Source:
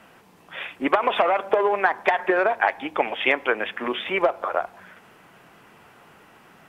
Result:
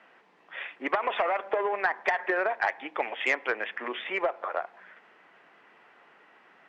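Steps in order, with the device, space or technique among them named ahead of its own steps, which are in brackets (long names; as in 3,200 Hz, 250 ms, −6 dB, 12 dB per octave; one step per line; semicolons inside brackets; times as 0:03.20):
intercom (band-pass filter 330–3,700 Hz; parametric band 1,900 Hz +6 dB 0.39 octaves; soft clipping −6.5 dBFS, distortion −21 dB)
level −6.5 dB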